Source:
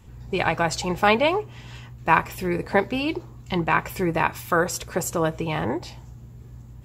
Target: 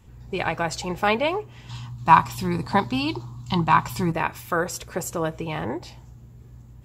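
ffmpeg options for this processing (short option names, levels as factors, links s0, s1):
-filter_complex "[0:a]asettb=1/sr,asplit=3[s0][s1][s2];[s0]atrim=end=1.694[s3];[s1]atrim=start=1.69:end=4.12,asetpts=PTS-STARTPTS,afade=t=in:d=0.004:c=qsin,afade=t=out:st=2.426:d=0.004:c=qsin,equalizer=f=125:t=o:w=1:g=9,equalizer=f=250:t=o:w=1:g=5,equalizer=f=500:t=o:w=1:g=-10,equalizer=f=1000:t=o:w=1:g=12,equalizer=f=2000:t=o:w=1:g=-7,equalizer=f=4000:t=o:w=1:g=10,equalizer=f=8000:t=o:w=1:g=5[s4];[s2]atrim=start=4.116[s5];[s3][s4]acrossfade=d=0.004:c1=hsin:c2=qsin[s6];[s6][s5]acrossfade=d=0.004:c1=qsin:c2=hsin,volume=0.708"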